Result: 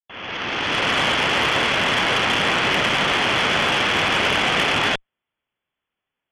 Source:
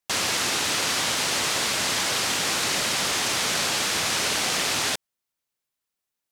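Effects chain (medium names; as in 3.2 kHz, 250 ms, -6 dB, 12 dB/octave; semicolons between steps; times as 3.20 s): fade-in on the opening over 0.96 s; brick-wall FIR low-pass 3.5 kHz; Chebyshev shaper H 6 -19 dB, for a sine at -15 dBFS; trim +8 dB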